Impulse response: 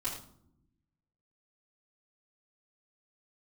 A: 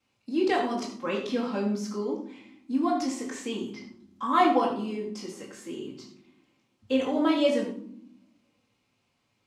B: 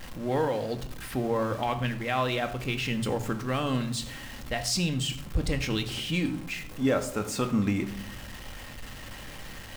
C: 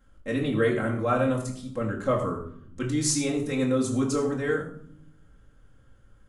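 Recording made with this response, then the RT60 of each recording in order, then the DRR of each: A; non-exponential decay, non-exponential decay, non-exponential decay; −10.0, 6.0, −2.5 decibels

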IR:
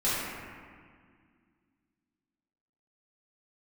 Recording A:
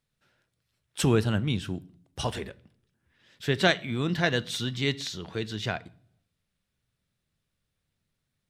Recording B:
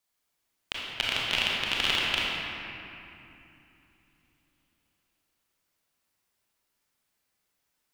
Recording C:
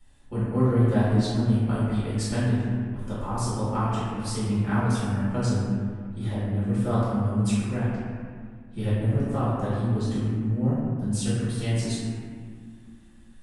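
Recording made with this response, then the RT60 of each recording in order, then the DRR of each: C; non-exponential decay, 2.8 s, 1.9 s; 15.0, −5.5, −11.5 decibels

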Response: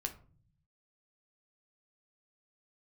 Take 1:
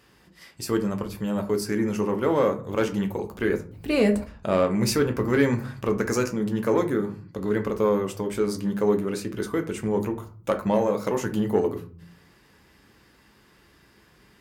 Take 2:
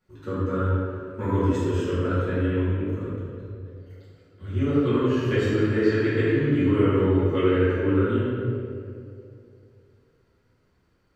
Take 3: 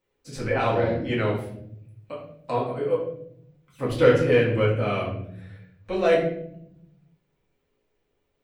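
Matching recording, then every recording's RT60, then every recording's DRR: 1; 0.45, 2.5, 0.70 seconds; 4.5, −14.5, −6.5 decibels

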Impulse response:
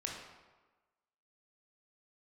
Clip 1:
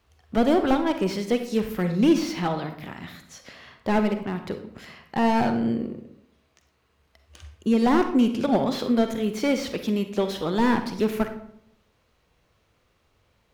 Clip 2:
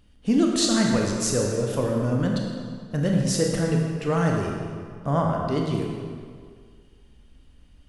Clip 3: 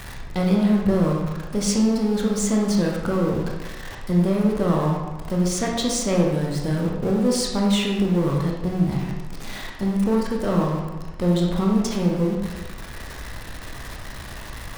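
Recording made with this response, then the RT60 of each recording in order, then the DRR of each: 3; 0.75, 2.0, 1.3 seconds; 7.5, −0.5, −1.5 decibels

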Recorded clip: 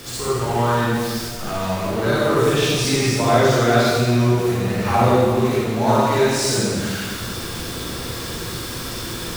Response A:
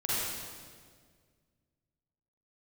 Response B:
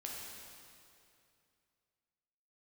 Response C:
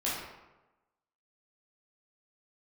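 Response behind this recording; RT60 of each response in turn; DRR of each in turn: A; 1.8, 2.5, 1.1 seconds; −9.5, −3.0, −8.0 decibels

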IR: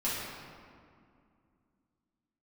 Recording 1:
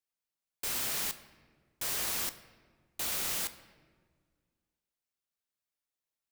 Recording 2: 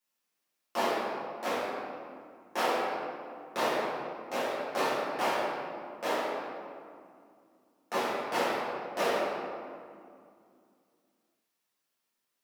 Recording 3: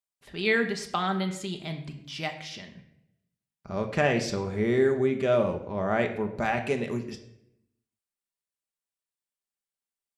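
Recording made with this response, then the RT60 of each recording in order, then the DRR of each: 2; 1.7, 2.3, 0.80 seconds; 11.0, −10.0, 4.0 decibels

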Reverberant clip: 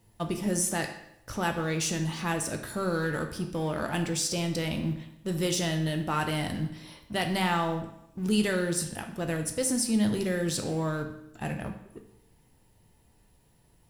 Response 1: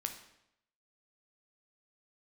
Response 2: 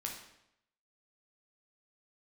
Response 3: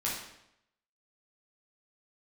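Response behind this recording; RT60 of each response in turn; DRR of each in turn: 1; 0.80, 0.80, 0.80 seconds; 4.5, −0.5, −6.5 decibels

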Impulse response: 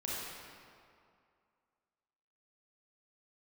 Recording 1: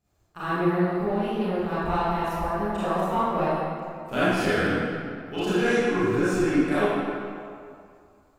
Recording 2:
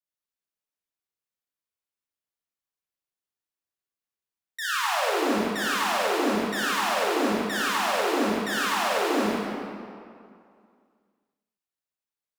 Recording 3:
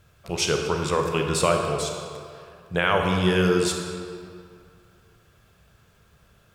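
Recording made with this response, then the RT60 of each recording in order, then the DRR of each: 2; 2.3, 2.3, 2.3 seconds; −13.5, −6.5, 2.5 decibels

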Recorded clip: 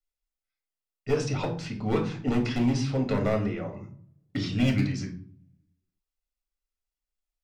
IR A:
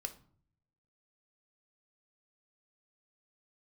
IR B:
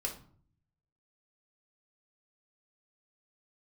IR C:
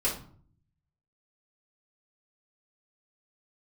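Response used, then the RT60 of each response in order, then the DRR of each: B; 0.50, 0.50, 0.50 seconds; 7.0, 0.0, −7.0 decibels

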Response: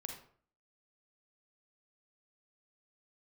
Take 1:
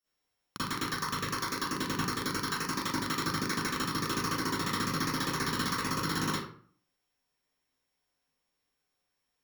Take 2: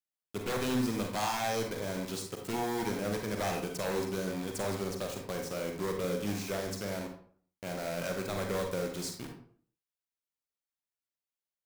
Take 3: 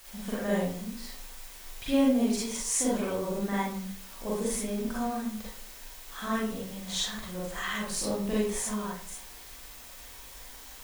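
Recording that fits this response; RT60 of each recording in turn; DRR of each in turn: 2; 0.50, 0.50, 0.50 seconds; −13.5, 2.5, −6.5 decibels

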